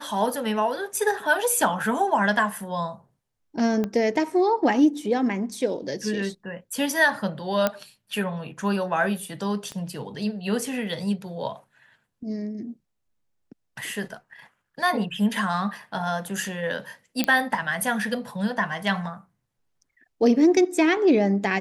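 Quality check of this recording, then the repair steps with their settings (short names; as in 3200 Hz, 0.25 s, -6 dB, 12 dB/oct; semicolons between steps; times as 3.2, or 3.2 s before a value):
3.84 pop -15 dBFS
7.67 pop -8 dBFS
9.72 pop -22 dBFS
17.24 pop -7 dBFS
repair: de-click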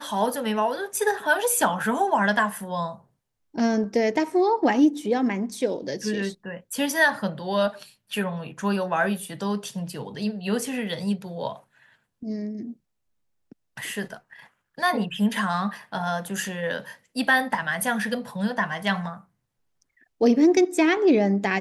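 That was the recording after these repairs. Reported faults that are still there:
3.84 pop
9.72 pop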